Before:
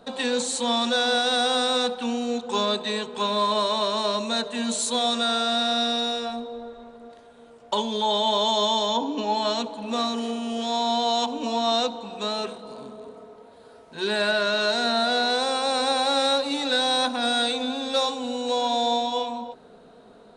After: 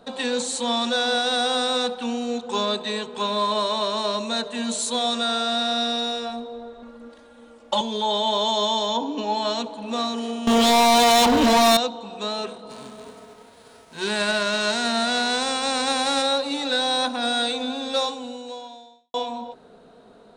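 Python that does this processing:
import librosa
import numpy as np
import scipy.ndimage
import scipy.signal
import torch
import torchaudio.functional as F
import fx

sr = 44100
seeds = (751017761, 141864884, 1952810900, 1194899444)

y = fx.comb(x, sr, ms=3.6, depth=0.97, at=(6.82, 7.81))
y = fx.leveller(y, sr, passes=5, at=(10.47, 11.77))
y = fx.envelope_flatten(y, sr, power=0.6, at=(12.69, 16.21), fade=0.02)
y = fx.edit(y, sr, fx.fade_out_span(start_s=18.01, length_s=1.13, curve='qua'), tone=tone)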